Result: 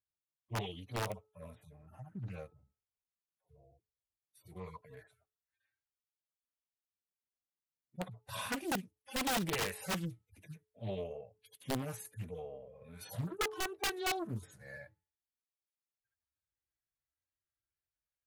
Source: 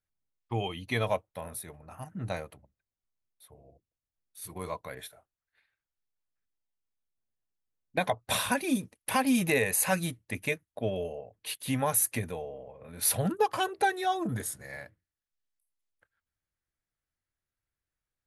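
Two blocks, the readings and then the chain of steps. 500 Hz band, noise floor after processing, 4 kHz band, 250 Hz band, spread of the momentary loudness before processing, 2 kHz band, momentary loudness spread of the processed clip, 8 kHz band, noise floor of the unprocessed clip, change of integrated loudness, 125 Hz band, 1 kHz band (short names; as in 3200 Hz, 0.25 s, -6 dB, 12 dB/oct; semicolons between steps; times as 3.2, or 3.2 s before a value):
-10.0 dB, under -85 dBFS, -5.0 dB, -10.0 dB, 17 LU, -8.5 dB, 19 LU, -13.0 dB, under -85 dBFS, -9.0 dB, -6.5 dB, -10.5 dB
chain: median-filter separation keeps harmonic; HPF 45 Hz 12 dB/oct; de-hum 431.3 Hz, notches 3; wrapped overs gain 23 dB; Doppler distortion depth 0.62 ms; gain -5 dB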